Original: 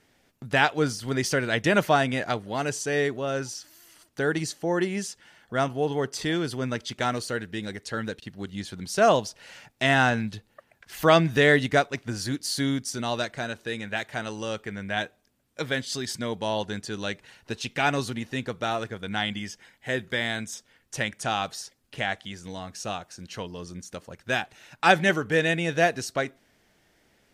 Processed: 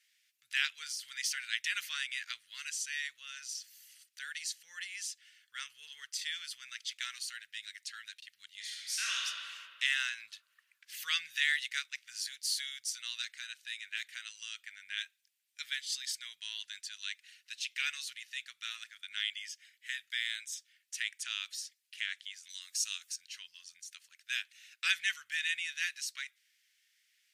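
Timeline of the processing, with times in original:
8.57–9.25 reverb throw, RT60 2.3 s, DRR -4.5 dB
22.49–23.16 tone controls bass -4 dB, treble +11 dB
whole clip: inverse Chebyshev high-pass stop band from 780 Hz, stop band 50 dB; gain -3.5 dB

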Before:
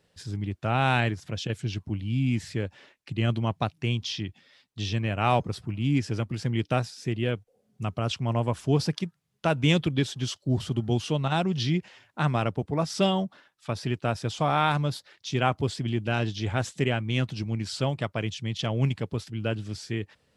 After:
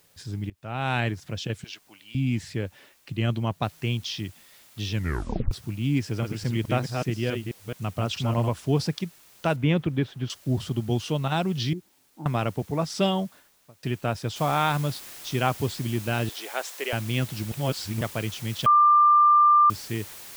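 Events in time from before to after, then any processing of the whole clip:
0.5–1.1 fade in, from -22.5 dB
1.64–2.15 HPF 950 Hz
3.63 noise floor step -67 dB -55 dB
4.93 tape stop 0.58 s
6.01–8.49 reverse delay 0.215 s, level -4 dB
9.56–10.3 LPF 2100 Hz
11.73–12.26 vocal tract filter u
13.17–13.83 studio fade out
14.36 noise floor step -64 dB -43 dB
16.29–16.93 HPF 430 Hz 24 dB/oct
17.52–18.01 reverse
18.66–19.7 bleep 1190 Hz -13.5 dBFS

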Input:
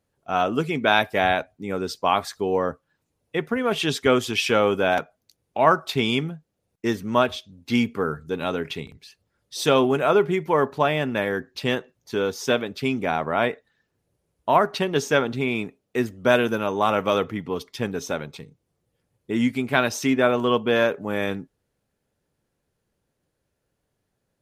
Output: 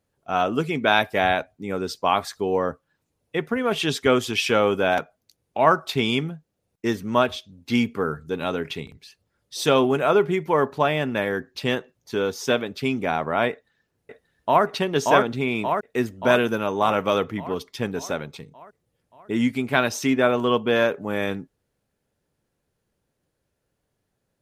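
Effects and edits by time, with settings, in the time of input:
13.51–14.64 echo throw 0.58 s, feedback 60%, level -1.5 dB

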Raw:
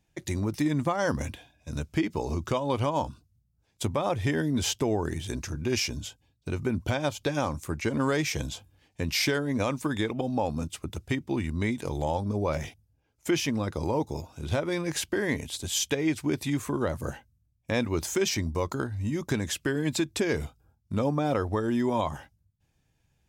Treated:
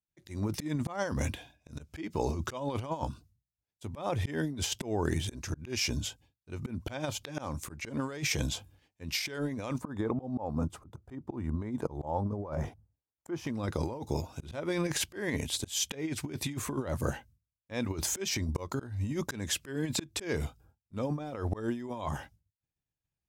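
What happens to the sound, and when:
9.78–13.47 resonant high shelf 1700 Hz -13 dB, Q 1.5
whole clip: expander -55 dBFS; auto swell 0.275 s; negative-ratio compressor -31 dBFS, ratio -0.5

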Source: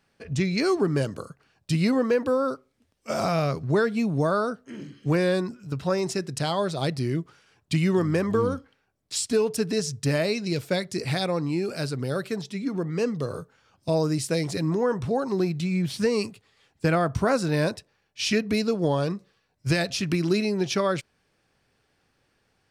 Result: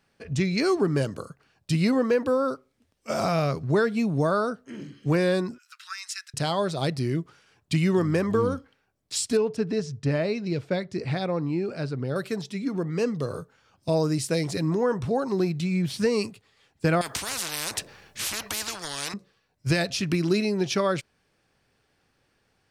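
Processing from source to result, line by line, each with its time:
5.58–6.34 steep high-pass 1300 Hz 48 dB/oct
9.37–12.16 tape spacing loss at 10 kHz 20 dB
17.01–19.14 spectral compressor 10:1

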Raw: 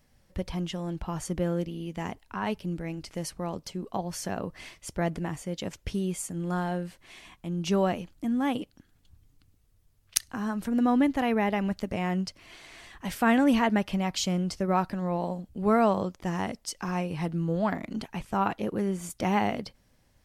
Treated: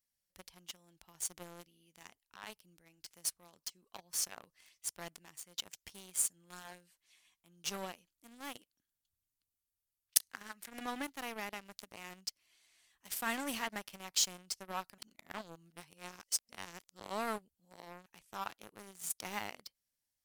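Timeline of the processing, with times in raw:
3.36–7.79 LFO bell 3.9 Hz 1000–6300 Hz +7 dB
10.29–11.02 bell 2000 Hz +12.5 dB
14.98–18.06 reverse
whole clip: pre-emphasis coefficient 0.9; sample leveller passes 3; low shelf 160 Hz -4 dB; gain -7.5 dB

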